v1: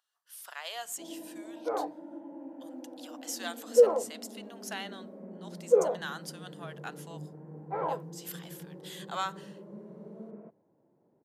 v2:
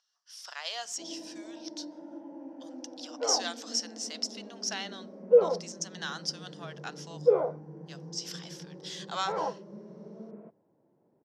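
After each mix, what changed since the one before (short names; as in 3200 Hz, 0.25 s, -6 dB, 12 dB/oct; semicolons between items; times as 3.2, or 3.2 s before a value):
second sound: entry +1.55 s; master: add synth low-pass 5500 Hz, resonance Q 7.4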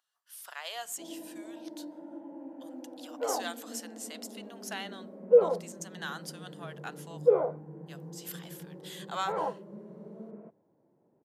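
master: remove synth low-pass 5500 Hz, resonance Q 7.4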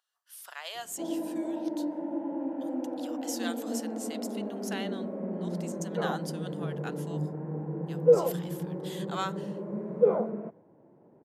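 first sound +11.0 dB; second sound: entry +2.75 s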